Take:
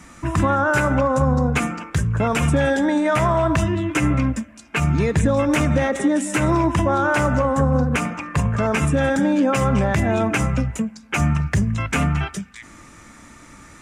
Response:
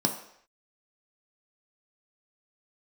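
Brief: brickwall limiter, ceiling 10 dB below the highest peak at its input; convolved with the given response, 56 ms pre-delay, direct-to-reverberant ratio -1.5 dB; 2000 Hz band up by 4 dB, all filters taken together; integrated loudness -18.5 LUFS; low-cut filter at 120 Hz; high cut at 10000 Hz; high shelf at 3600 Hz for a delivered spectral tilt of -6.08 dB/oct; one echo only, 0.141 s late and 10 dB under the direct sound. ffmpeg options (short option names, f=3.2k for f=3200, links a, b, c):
-filter_complex "[0:a]highpass=120,lowpass=10k,equalizer=f=2k:t=o:g=6.5,highshelf=f=3.6k:g=-4,alimiter=limit=-14dB:level=0:latency=1,aecho=1:1:141:0.316,asplit=2[a][b];[1:a]atrim=start_sample=2205,adelay=56[c];[b][c]afir=irnorm=-1:irlink=0,volume=-7.5dB[d];[a][d]amix=inputs=2:normalize=0,volume=-5dB"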